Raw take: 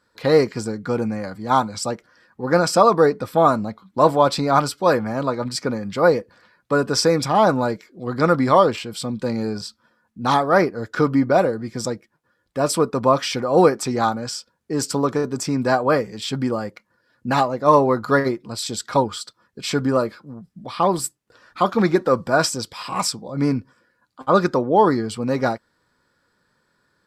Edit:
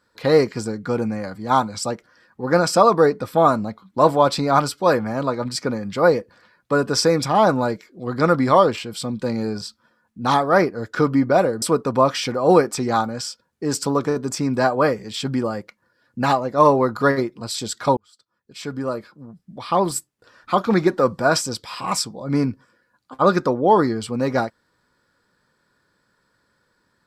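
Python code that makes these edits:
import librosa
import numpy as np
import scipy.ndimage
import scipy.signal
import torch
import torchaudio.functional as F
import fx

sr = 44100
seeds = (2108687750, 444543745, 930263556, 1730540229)

y = fx.edit(x, sr, fx.cut(start_s=11.62, length_s=1.08),
    fx.fade_in_span(start_s=19.05, length_s=1.88), tone=tone)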